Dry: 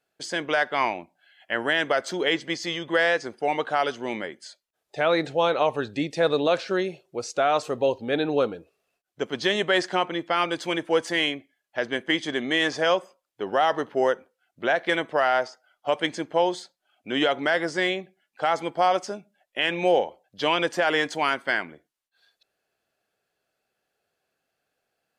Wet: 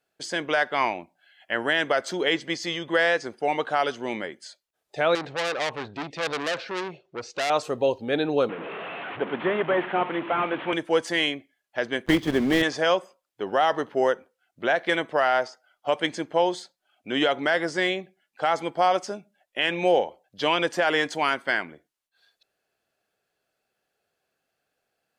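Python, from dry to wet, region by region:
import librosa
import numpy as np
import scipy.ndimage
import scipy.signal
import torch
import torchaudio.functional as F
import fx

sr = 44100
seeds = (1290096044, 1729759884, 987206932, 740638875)

y = fx.chain(x, sr, fx.lowpass(hz=4000.0, slope=12),
    fx.transformer_sat(knee_hz=3500.0), at=(5.15, 7.5))
y = fx.chain(y, sr, fx.delta_mod(bps=16000, step_db=-30.0),
    fx.highpass(hz=140.0, slope=24),
    fx.peak_eq(hz=930.0, db=4.0, octaves=1.2), at=(8.49, 10.73))
y = fx.chain(y, sr, fx.block_float(bits=3),
    fx.lowpass(hz=2200.0, slope=6),
    fx.low_shelf(hz=430.0, db=10.0), at=(12.06, 12.63))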